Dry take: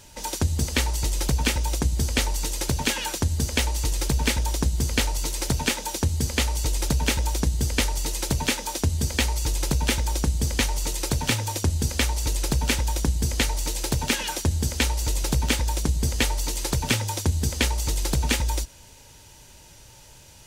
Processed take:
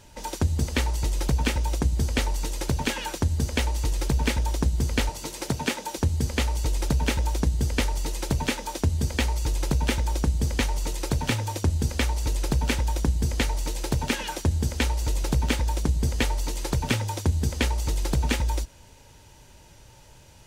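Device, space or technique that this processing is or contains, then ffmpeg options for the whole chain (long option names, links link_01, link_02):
behind a face mask: -filter_complex "[0:a]highshelf=frequency=2900:gain=-8,asettb=1/sr,asplit=3[link_01][link_02][link_03];[link_01]atrim=end=5.094[link_04];[link_02]atrim=start=5.09:end=5.98,asetpts=PTS-STARTPTS,afade=type=in:duration=0.004:curve=qsin,afade=type=out:start_time=0.886:duration=0.004:curve=qsin,highpass=110[link_05];[link_03]atrim=start=5.976[link_06];[link_04][link_05]acrossfade=duration=0.004:curve1=hsin:curve2=qsin[link_07];[link_07][link_06]acrossfade=duration=0.004:curve1=qsin:curve2=hsin"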